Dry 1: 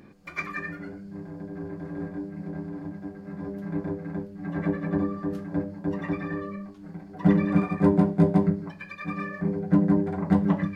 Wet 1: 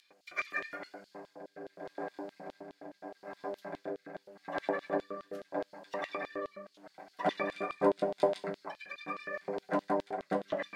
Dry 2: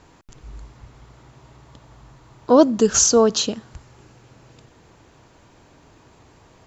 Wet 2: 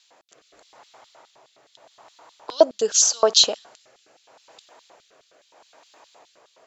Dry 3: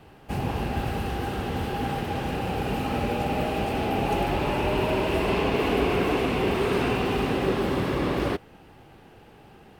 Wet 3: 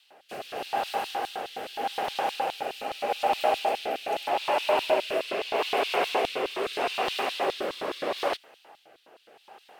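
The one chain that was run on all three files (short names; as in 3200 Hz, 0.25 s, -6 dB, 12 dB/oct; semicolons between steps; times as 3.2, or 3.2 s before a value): LFO high-pass square 4.8 Hz 660–3700 Hz; rotary speaker horn 0.8 Hz; gain +2 dB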